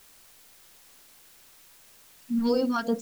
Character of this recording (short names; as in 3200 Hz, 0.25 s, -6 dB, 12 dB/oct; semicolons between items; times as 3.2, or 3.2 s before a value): phasing stages 2, 2.8 Hz, lowest notch 460–2600 Hz; a quantiser's noise floor 10-bit, dither triangular